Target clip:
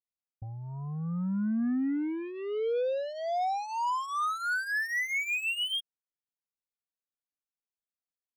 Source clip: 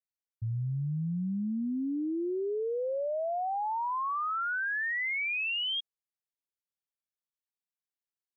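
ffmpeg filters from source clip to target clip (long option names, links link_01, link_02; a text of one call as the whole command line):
ffmpeg -i in.wav -af "adynamicsmooth=sensitivity=5:basefreq=1500,aeval=exprs='0.0376*(cos(1*acos(clip(val(0)/0.0376,-1,1)))-cos(1*PI/2))+0.00266*(cos(7*acos(clip(val(0)/0.0376,-1,1)))-cos(7*PI/2))':channel_layout=same,aecho=1:1:4.1:0.59" out.wav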